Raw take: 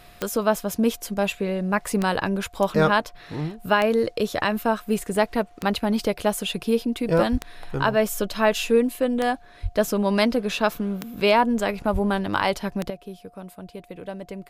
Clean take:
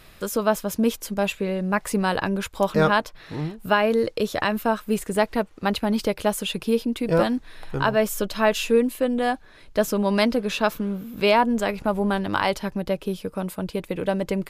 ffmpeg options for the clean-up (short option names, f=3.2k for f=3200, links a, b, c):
-filter_complex "[0:a]adeclick=t=4,bandreject=f=710:w=30,asplit=3[a][b][c];[a]afade=t=out:st=7.31:d=0.02[d];[b]highpass=f=140:w=0.5412,highpass=f=140:w=1.3066,afade=t=in:st=7.31:d=0.02,afade=t=out:st=7.43:d=0.02[e];[c]afade=t=in:st=7.43:d=0.02[f];[d][e][f]amix=inputs=3:normalize=0,asplit=3[g][h][i];[g]afade=t=out:st=9.62:d=0.02[j];[h]highpass=f=140:w=0.5412,highpass=f=140:w=1.3066,afade=t=in:st=9.62:d=0.02,afade=t=out:st=9.74:d=0.02[k];[i]afade=t=in:st=9.74:d=0.02[l];[j][k][l]amix=inputs=3:normalize=0,asplit=3[m][n][o];[m]afade=t=out:st=11.92:d=0.02[p];[n]highpass=f=140:w=0.5412,highpass=f=140:w=1.3066,afade=t=in:st=11.92:d=0.02,afade=t=out:st=12.04:d=0.02[q];[o]afade=t=in:st=12.04:d=0.02[r];[p][q][r]amix=inputs=3:normalize=0,asetnsamples=n=441:p=0,asendcmd='12.9 volume volume 10.5dB',volume=0dB"